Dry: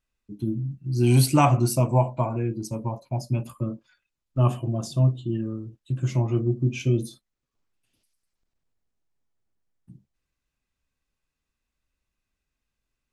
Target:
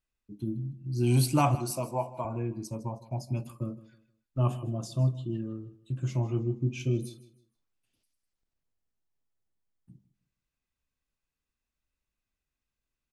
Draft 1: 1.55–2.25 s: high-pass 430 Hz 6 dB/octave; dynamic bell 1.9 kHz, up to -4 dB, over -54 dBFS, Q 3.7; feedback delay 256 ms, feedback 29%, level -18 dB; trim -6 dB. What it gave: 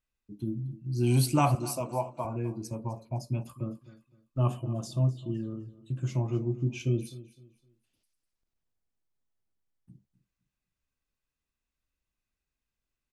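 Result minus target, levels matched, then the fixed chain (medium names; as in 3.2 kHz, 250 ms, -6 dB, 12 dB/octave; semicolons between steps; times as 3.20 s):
echo 99 ms late
1.55–2.25 s: high-pass 430 Hz 6 dB/octave; dynamic bell 1.9 kHz, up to -4 dB, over -54 dBFS, Q 3.7; feedback delay 157 ms, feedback 29%, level -18 dB; trim -6 dB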